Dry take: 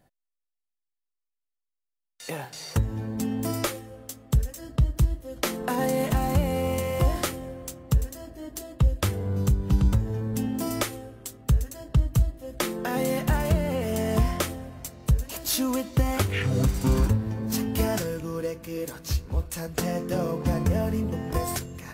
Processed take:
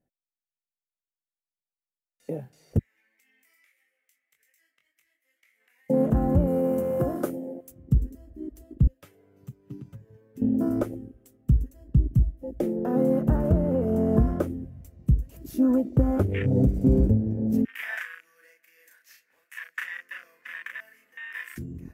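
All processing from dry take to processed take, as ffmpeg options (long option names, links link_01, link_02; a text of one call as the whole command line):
ffmpeg -i in.wav -filter_complex "[0:a]asettb=1/sr,asplit=3[link_01][link_02][link_03];[link_01]atrim=end=2.794[link_04];[link_02]atrim=start=2.79:end=5.9,asetpts=PTS-STARTPTS,afade=type=in:duration=0.004:curve=qsin,afade=type=out:start_time=3.106:duration=0.004:curve=qsin,flanger=delay=18.5:depth=3.6:speed=1.8,highpass=frequency=2100:width_type=q:width=8.6,acompressor=threshold=-42dB:ratio=6:attack=3.2:release=140:knee=1:detection=peak[link_05];[link_03]atrim=start=5.896[link_06];[link_04][link_05]acrossfade=duration=0.004:curve1=hsin:curve2=qsin[link_07];[link_07][link_06]acrossfade=duration=0.004:curve1=qsin:curve2=hsin,asettb=1/sr,asplit=3[link_08][link_09][link_10];[link_08]atrim=end=6.474[link_11];[link_09]atrim=start=6.47:end=7.72,asetpts=PTS-STARTPTS,afade=type=in:duration=0.004:curve=qsin,afade=type=out:start_time=1.246:duration=0.004:curve=qsin,highpass=160,highshelf=frequency=6800:gain=11.5[link_12];[link_10]atrim=start=7.716[link_13];[link_11][link_12]acrossfade=duration=0.004:curve1=hsin:curve2=qsin[link_14];[link_14][link_13]acrossfade=duration=0.004:curve1=qsin:curve2=hsin,asettb=1/sr,asplit=3[link_15][link_16][link_17];[link_15]atrim=end=8.874[link_18];[link_16]atrim=start=8.87:end=10.42,asetpts=PTS-STARTPTS,afade=type=in:duration=0.004:curve=qsin,afade=type=out:start_time=1.546:duration=0.004:curve=qsin,highpass=frequency=1500:poles=1,equalizer=frequency=11000:width=0.37:gain=-7,aecho=1:1:7.2:0.69,atrim=end_sample=68355[link_19];[link_17]atrim=start=10.416[link_20];[link_18][link_19]acrossfade=duration=0.004:curve1=hsin:curve2=qsin[link_21];[link_21][link_20]acrossfade=duration=0.004:curve1=qsin:curve2=hsin,asettb=1/sr,asplit=3[link_22][link_23][link_24];[link_22]atrim=end=17.654[link_25];[link_23]atrim=start=17.65:end=21.58,asetpts=PTS-STARTPTS,afade=type=in:duration=0.004:curve=qsin,afade=type=out:start_time=3.926:duration=0.004:curve=qsin,highpass=frequency=1800:width_type=q:width=4.6,asplit=2[link_26][link_27];[link_27]adelay=35,volume=-2.5dB[link_28];[link_26][link_28]amix=inputs=2:normalize=0,atrim=end_sample=173313[link_29];[link_24]atrim=start=21.576[link_30];[link_25][link_29]acrossfade=duration=0.004:curve1=hsin:curve2=qsin[link_31];[link_31][link_30]acrossfade=duration=0.004:curve1=qsin:curve2=hsin,afwtdn=0.0355,equalizer=frequency=250:width_type=o:width=1:gain=6,equalizer=frequency=500:width_type=o:width=1:gain=4,equalizer=frequency=1000:width_type=o:width=1:gain=-8,equalizer=frequency=4000:width_type=o:width=1:gain=-9,equalizer=frequency=8000:width_type=o:width=1:gain=-4" out.wav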